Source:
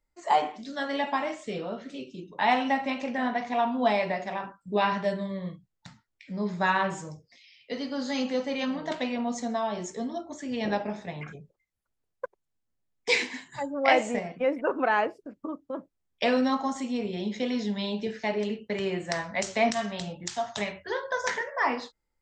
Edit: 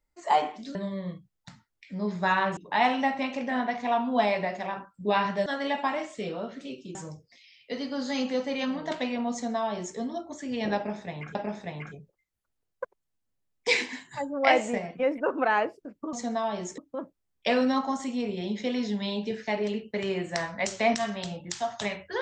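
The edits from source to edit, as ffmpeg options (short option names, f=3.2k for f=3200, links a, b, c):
-filter_complex "[0:a]asplit=8[a][b][c][d][e][f][g][h];[a]atrim=end=0.752[i];[b]atrim=start=5.128:end=6.952[j];[c]atrim=start=2.238:end=5.132[k];[d]atrim=start=0.748:end=2.242[l];[e]atrim=start=6.948:end=11.352[m];[f]atrim=start=10.758:end=15.542[n];[g]atrim=start=9.318:end=9.972[o];[h]atrim=start=15.538[p];[i][j]acrossfade=d=0.004:c1=hsin:c2=hsin[q];[q][k]acrossfade=d=0.004:c1=hsin:c2=hsin[r];[r][l]acrossfade=d=0.004:c1=hsin:c2=hsin[s];[s][m]acrossfade=d=0.004:c1=hsin:c2=hsin[t];[t][n]acrossfade=d=0.004:c1=hsin:c2=hsin[u];[u][o]acrossfade=d=0.004:c1=hsin:c2=hsin[v];[v][p]acrossfade=d=0.004:c1=hsin:c2=hsin"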